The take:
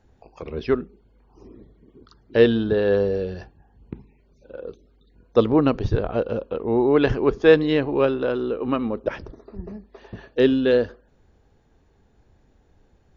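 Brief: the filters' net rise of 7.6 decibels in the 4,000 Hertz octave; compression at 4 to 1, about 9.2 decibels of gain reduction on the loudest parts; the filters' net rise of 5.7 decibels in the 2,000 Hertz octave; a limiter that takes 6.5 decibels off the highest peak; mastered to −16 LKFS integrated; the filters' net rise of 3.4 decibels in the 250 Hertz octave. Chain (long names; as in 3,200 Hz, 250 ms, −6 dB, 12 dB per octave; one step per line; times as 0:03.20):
parametric band 250 Hz +4 dB
parametric band 2,000 Hz +5.5 dB
parametric band 4,000 Hz +7.5 dB
downward compressor 4 to 1, threshold −18 dBFS
level +9.5 dB
brickwall limiter −5 dBFS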